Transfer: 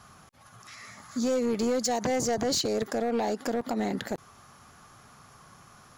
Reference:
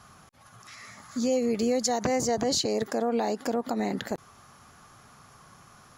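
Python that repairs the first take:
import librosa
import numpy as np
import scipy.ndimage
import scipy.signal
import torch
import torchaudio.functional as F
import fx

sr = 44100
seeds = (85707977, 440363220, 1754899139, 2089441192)

y = fx.fix_declip(x, sr, threshold_db=-22.0)
y = fx.fix_interpolate(y, sr, at_s=(3.61,), length_ms=3.6)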